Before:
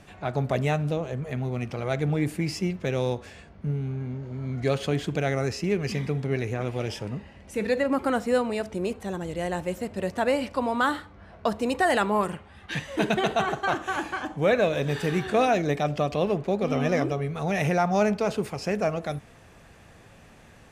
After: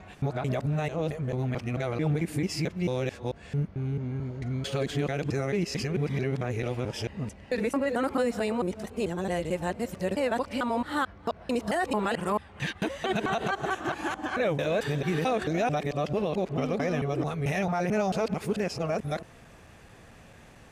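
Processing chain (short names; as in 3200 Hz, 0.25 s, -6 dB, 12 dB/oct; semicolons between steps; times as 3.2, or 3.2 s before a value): local time reversal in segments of 0.221 s; limiter -18.5 dBFS, peak gain reduction 6.5 dB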